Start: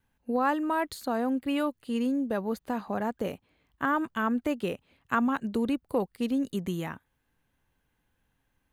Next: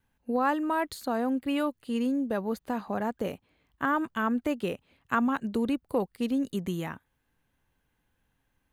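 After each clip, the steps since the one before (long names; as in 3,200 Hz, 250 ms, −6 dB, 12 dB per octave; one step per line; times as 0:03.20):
no processing that can be heard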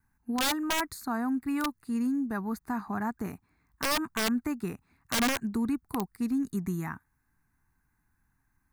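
phaser with its sweep stopped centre 1,300 Hz, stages 4
wrap-around overflow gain 23.5 dB
level +2.5 dB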